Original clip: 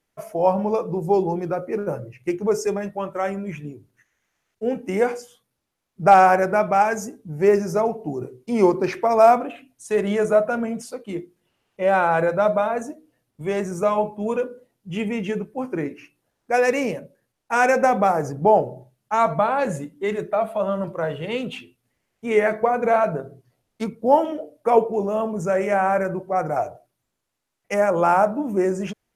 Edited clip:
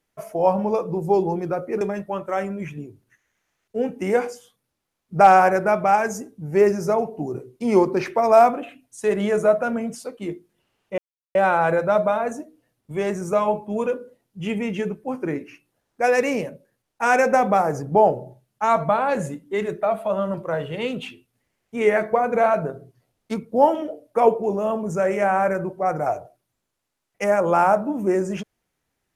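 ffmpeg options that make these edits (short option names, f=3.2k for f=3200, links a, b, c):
-filter_complex "[0:a]asplit=3[a][b][c];[a]atrim=end=1.812[d];[b]atrim=start=2.678:end=11.85,asetpts=PTS-STARTPTS,afade=t=out:st=9.168:d=0.004:c=hsin,apad=pad_dur=0.37[e];[c]atrim=start=11.85,asetpts=PTS-STARTPTS,afade=t=in:d=0.004:c=hsin[f];[e][f]concat=n=2:v=0:a=1[g];[d][g]acrossfade=d=0.004:c1=hsin:c2=hsin"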